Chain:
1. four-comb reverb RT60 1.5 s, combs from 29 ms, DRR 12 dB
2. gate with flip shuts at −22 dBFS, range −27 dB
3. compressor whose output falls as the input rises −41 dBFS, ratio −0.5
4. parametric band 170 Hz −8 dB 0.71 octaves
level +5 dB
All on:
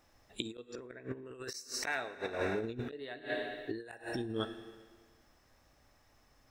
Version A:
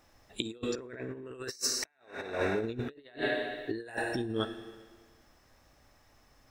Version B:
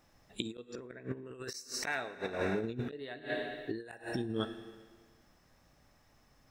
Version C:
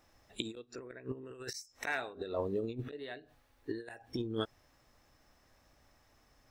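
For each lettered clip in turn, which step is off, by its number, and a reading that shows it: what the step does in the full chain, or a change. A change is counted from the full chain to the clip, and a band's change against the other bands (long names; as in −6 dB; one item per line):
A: 2, change in momentary loudness spread −1 LU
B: 4, 125 Hz band +3.0 dB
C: 1, 8 kHz band −4.0 dB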